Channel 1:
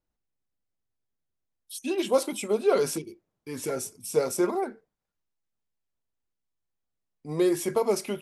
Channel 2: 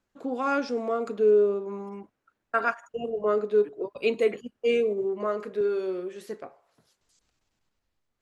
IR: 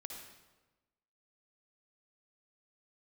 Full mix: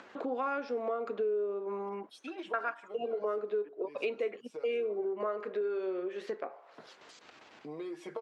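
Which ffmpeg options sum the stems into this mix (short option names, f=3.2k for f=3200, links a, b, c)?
-filter_complex "[0:a]aecho=1:1:6.4:0.74,acompressor=threshold=-32dB:ratio=3,adelay=400,volume=-14.5dB,asplit=2[a][b];[b]volume=-15dB[c];[1:a]volume=1.5dB[d];[2:a]atrim=start_sample=2205[e];[c][e]afir=irnorm=-1:irlink=0[f];[a][d][f]amix=inputs=3:normalize=0,acompressor=mode=upward:threshold=-28dB:ratio=2.5,highpass=360,lowpass=2.9k,acompressor=threshold=-31dB:ratio=5"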